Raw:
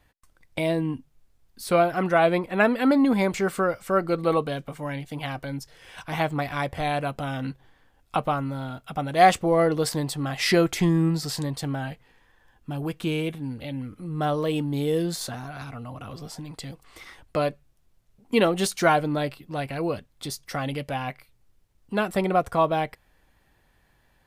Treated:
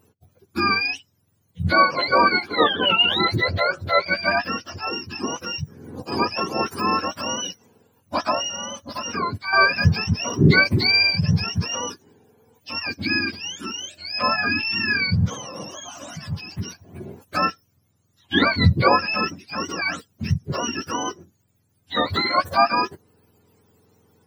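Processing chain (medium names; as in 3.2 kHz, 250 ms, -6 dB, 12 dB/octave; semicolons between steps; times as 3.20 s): spectrum inverted on a logarithmic axis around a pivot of 880 Hz; 8.44–9.53 s: compression 4:1, threshold -31 dBFS, peak gain reduction 15.5 dB; trim +5.5 dB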